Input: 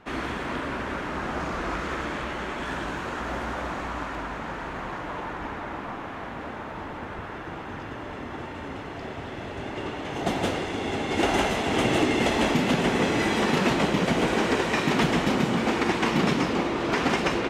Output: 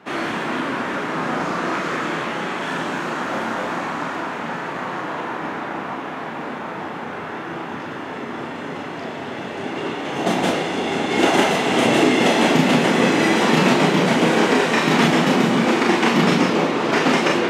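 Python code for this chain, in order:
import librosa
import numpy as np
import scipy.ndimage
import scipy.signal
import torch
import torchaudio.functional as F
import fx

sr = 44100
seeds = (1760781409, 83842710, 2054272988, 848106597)

y = scipy.signal.sosfilt(scipy.signal.butter(4, 140.0, 'highpass', fs=sr, output='sos'), x)
y = fx.room_early_taps(y, sr, ms=(31, 43), db=(-4.5, -5.0))
y = y * librosa.db_to_amplitude(5.0)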